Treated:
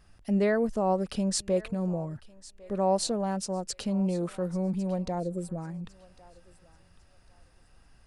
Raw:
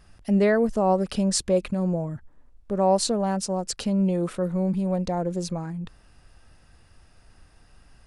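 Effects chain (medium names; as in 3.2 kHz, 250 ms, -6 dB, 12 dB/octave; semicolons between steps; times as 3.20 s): time-frequency box 5.20–5.58 s, 700–7300 Hz -16 dB; thinning echo 1102 ms, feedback 32%, high-pass 690 Hz, level -18.5 dB; trim -5 dB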